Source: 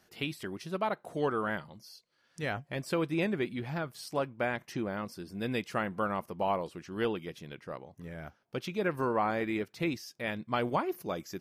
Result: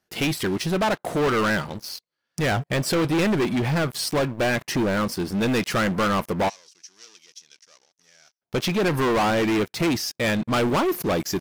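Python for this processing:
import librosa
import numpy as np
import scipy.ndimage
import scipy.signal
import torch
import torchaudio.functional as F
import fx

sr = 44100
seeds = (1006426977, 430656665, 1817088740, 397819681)

y = fx.leveller(x, sr, passes=5)
y = fx.bandpass_q(y, sr, hz=5800.0, q=5.6, at=(6.48, 8.41), fade=0.02)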